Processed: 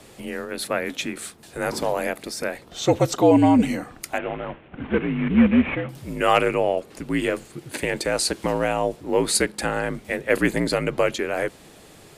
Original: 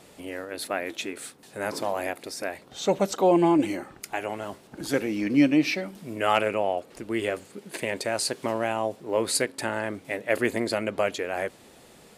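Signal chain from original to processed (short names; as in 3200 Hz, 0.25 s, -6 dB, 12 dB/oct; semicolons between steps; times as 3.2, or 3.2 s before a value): 4.18–5.89 CVSD 16 kbps; frequency shift -61 Hz; gain +4.5 dB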